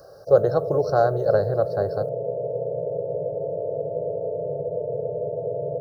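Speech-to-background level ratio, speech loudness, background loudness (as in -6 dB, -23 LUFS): 6.5 dB, -22.0 LUFS, -28.5 LUFS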